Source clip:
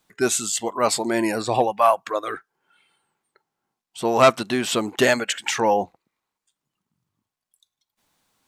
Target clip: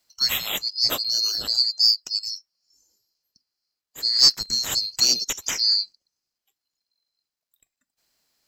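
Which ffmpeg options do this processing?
-af "afftfilt=real='real(if(lt(b,736),b+184*(1-2*mod(floor(b/184),2)),b),0)':imag='imag(if(lt(b,736),b+184*(1-2*mod(floor(b/184),2)),b),0)':win_size=2048:overlap=0.75,aeval=exprs='0.944*(cos(1*acos(clip(val(0)/0.944,-1,1)))-cos(1*PI/2))+0.0266*(cos(3*acos(clip(val(0)/0.944,-1,1)))-cos(3*PI/2))':c=same,volume=-1dB"

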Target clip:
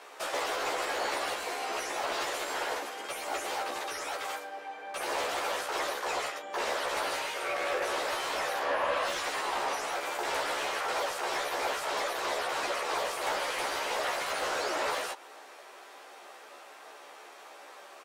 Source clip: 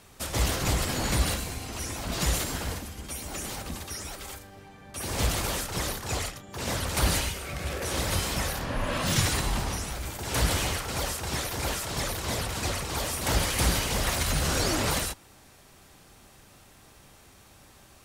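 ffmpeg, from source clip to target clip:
-filter_complex "[0:a]highpass=f=400:w=0.5412,highpass=f=400:w=1.3066,acompressor=threshold=-34dB:ratio=6,asplit=2[a][b];[b]highpass=f=720:p=1,volume=12dB,asoftclip=type=tanh:threshold=-22dB[c];[a][c]amix=inputs=2:normalize=0,lowpass=f=1.1k:p=1,volume=-6dB,asplit=2[d][e];[e]adelay=14,volume=-2.5dB[f];[d][f]amix=inputs=2:normalize=0,volume=4.5dB"

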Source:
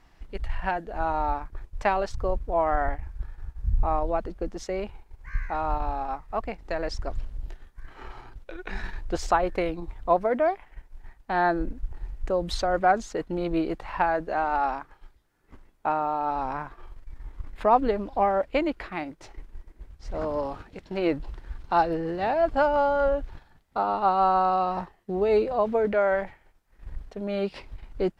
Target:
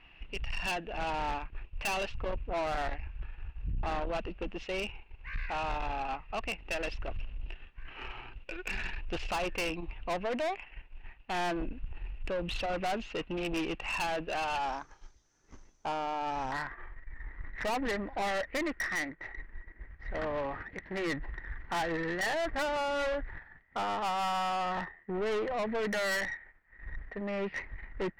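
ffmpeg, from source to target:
-af "asetnsamples=n=441:p=0,asendcmd='14.58 lowpass f 6100;16.52 lowpass f 1900',lowpass=f=2.7k:t=q:w=14,aeval=exprs='(tanh(22.4*val(0)+0.2)-tanh(0.2))/22.4':c=same,volume=-2.5dB"

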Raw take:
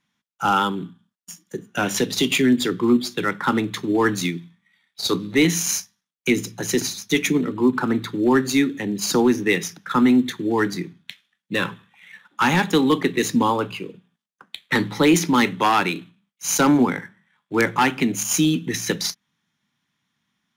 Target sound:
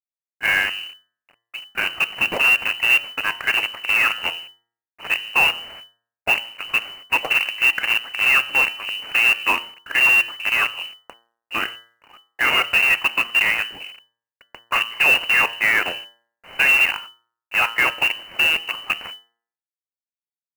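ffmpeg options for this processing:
-af "aresample=11025,acrusher=bits=4:dc=4:mix=0:aa=0.000001,aresample=44100,lowpass=f=2.6k:t=q:w=0.5098,lowpass=f=2.6k:t=q:w=0.6013,lowpass=f=2.6k:t=q:w=0.9,lowpass=f=2.6k:t=q:w=2.563,afreqshift=-3000,bandreject=f=116.3:t=h:w=4,bandreject=f=232.6:t=h:w=4,bandreject=f=348.9:t=h:w=4,bandreject=f=465.2:t=h:w=4,bandreject=f=581.5:t=h:w=4,bandreject=f=697.8:t=h:w=4,bandreject=f=814.1:t=h:w=4,bandreject=f=930.4:t=h:w=4,bandreject=f=1.0467k:t=h:w=4,bandreject=f=1.163k:t=h:w=4,bandreject=f=1.2793k:t=h:w=4,bandreject=f=1.3956k:t=h:w=4,bandreject=f=1.5119k:t=h:w=4,bandreject=f=1.6282k:t=h:w=4,bandreject=f=1.7445k:t=h:w=4,bandreject=f=1.8608k:t=h:w=4,bandreject=f=1.9771k:t=h:w=4,acrusher=bits=4:mode=log:mix=0:aa=0.000001"

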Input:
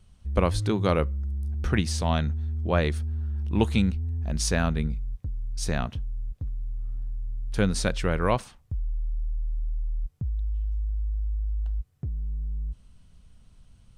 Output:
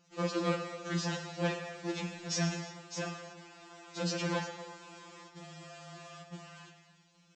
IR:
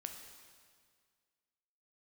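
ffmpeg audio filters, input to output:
-filter_complex "[0:a]bandreject=f=1.1k:w=13,aeval=exprs='(tanh(20*val(0)+0.2)-tanh(0.2))/20':c=same,atempo=1.9,aresample=16000,acrusher=bits=5:mode=log:mix=0:aa=0.000001,aresample=44100,highpass=260[a];[1:a]atrim=start_sample=2205,afade=t=out:st=0.42:d=0.01,atrim=end_sample=18963[b];[a][b]afir=irnorm=-1:irlink=0,afftfilt=real='re*2.83*eq(mod(b,8),0)':imag='im*2.83*eq(mod(b,8),0)':win_size=2048:overlap=0.75,volume=7.5dB"

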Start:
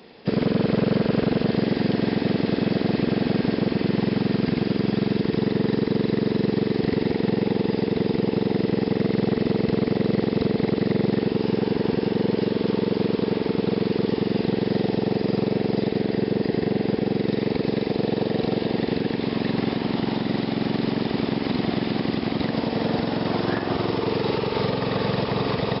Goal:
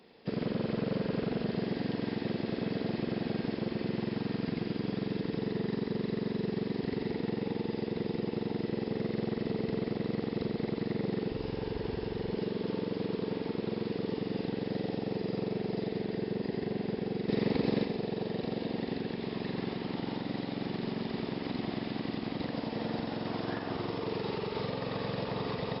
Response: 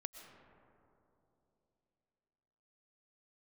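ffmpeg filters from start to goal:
-filter_complex "[0:a]asplit=3[a][b][c];[a]afade=t=out:st=11.3:d=0.02[d];[b]asubboost=boost=10.5:cutoff=58,afade=t=in:st=11.3:d=0.02,afade=t=out:st=12.31:d=0.02[e];[c]afade=t=in:st=12.31:d=0.02[f];[d][e][f]amix=inputs=3:normalize=0,asettb=1/sr,asplit=3[g][h][i];[g]atrim=end=17.294[j];[h]atrim=start=17.29:end=17.85,asetpts=PTS-STARTPTS,afade=t=in:d=0.004:c=qsin,afade=t=out:st=0.556:d=0.004:c=qsin,acontrast=50[k];[i]atrim=start=17.846[l];[j][k]acrossfade=d=0.004:c1=hsin:c2=qsin[m];[m][l]acrossfade=d=0.004:c1=qsin:c2=hsin[n];[1:a]atrim=start_sample=2205,afade=t=out:st=0.28:d=0.01,atrim=end_sample=12789,asetrate=66150,aresample=44100[o];[n][o]afir=irnorm=-1:irlink=0,volume=-3.5dB"

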